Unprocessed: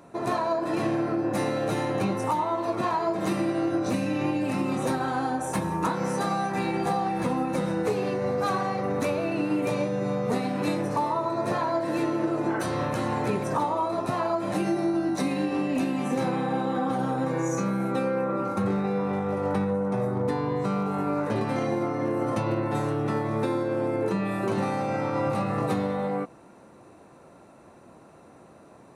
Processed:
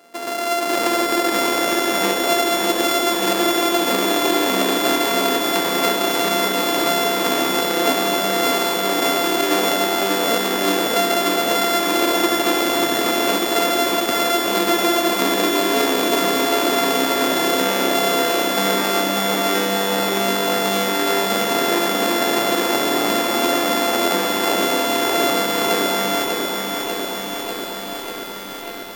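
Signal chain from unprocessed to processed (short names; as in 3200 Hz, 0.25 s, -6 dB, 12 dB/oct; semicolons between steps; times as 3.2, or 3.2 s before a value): sample sorter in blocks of 64 samples; AGC gain up to 12.5 dB; HPF 260 Hz 24 dB/oct; in parallel at +1.5 dB: compressor, threshold -25 dBFS, peak gain reduction 15 dB; on the sum: lo-fi delay 0.593 s, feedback 80%, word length 6-bit, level -4 dB; gain -5.5 dB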